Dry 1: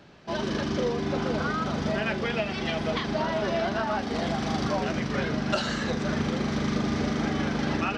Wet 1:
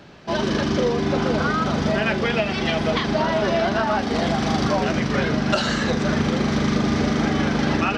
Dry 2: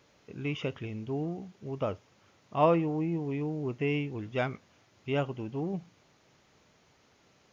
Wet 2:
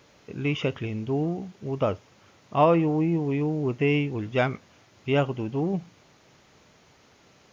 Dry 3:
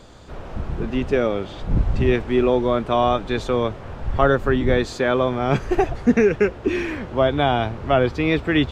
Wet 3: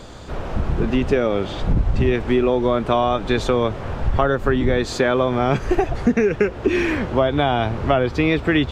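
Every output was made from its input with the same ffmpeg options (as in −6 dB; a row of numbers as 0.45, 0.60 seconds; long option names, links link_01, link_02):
-af "acompressor=threshold=-21dB:ratio=6,volume=7dB"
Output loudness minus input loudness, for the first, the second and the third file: +6.5, +6.5, +0.5 LU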